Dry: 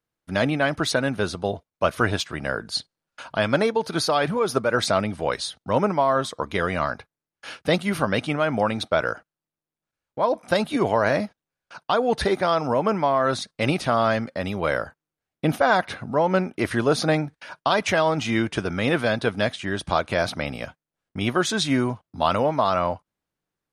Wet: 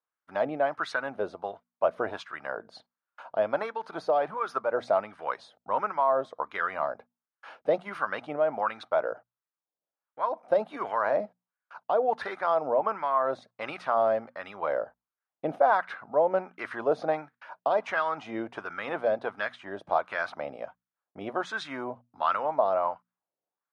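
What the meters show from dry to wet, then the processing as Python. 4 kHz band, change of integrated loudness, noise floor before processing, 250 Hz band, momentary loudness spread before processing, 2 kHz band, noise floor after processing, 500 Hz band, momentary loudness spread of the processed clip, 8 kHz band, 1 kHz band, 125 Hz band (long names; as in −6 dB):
−18.0 dB, −6.0 dB, below −85 dBFS, −15.5 dB, 8 LU, −8.0 dB, below −85 dBFS, −4.5 dB, 12 LU, below −20 dB, −3.5 dB, −22.0 dB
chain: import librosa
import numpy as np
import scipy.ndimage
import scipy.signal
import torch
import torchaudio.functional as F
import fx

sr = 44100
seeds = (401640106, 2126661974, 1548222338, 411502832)

y = fx.hum_notches(x, sr, base_hz=60, count=4)
y = fx.wah_lfo(y, sr, hz=1.4, low_hz=580.0, high_hz=1400.0, q=2.2)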